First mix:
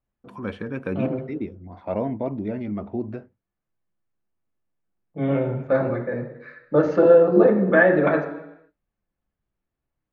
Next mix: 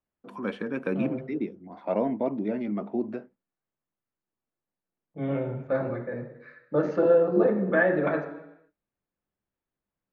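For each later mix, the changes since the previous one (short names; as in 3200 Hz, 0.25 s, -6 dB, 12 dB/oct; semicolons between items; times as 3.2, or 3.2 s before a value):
first voice: add HPF 180 Hz 24 dB/oct; second voice -6.5 dB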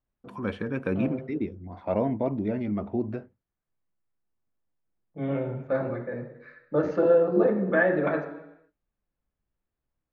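first voice: remove HPF 180 Hz 24 dB/oct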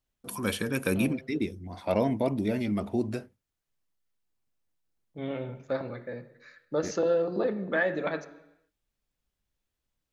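second voice: send -11.0 dB; master: remove LPF 1600 Hz 12 dB/oct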